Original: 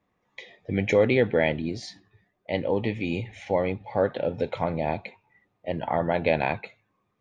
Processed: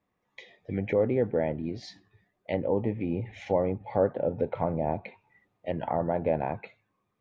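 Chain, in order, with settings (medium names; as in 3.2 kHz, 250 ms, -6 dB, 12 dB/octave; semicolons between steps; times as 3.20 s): gain riding within 3 dB 2 s; low-pass that closes with the level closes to 1 kHz, closed at -23 dBFS; trim -2 dB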